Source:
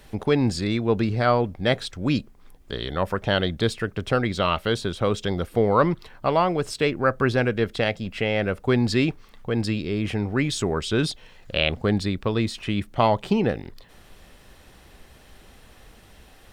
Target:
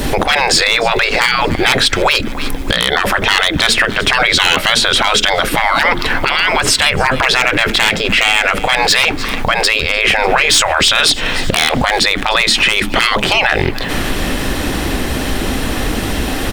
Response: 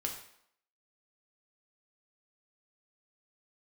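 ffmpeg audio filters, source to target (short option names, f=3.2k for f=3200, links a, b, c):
-af "equalizer=f=280:t=o:w=0.61:g=10,asoftclip=type=hard:threshold=-7.5dB,afftfilt=real='re*lt(hypot(re,im),0.126)':imag='im*lt(hypot(re,im),0.126)':win_size=1024:overlap=0.75,aeval=exprs='0.0596*(abs(mod(val(0)/0.0596+3,4)-2)-1)':c=same,aecho=1:1:299|598|897:0.0668|0.0334|0.0167,acompressor=threshold=-45dB:ratio=2,adynamicequalizer=threshold=0.00178:dfrequency=2000:dqfactor=0.78:tfrequency=2000:tqfactor=0.78:attack=5:release=100:ratio=0.375:range=3:mode=boostabove:tftype=bell,alimiter=level_in=33dB:limit=-1dB:release=50:level=0:latency=1,volume=-1dB"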